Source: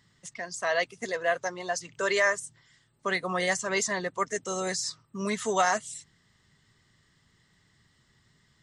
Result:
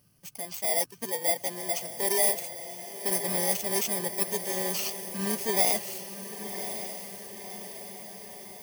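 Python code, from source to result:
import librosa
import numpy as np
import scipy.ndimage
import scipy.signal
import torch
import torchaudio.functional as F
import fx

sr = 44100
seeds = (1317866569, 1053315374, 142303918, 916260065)

y = fx.bit_reversed(x, sr, seeds[0], block=32)
y = fx.echo_diffused(y, sr, ms=1099, feedback_pct=59, wet_db=-9.5)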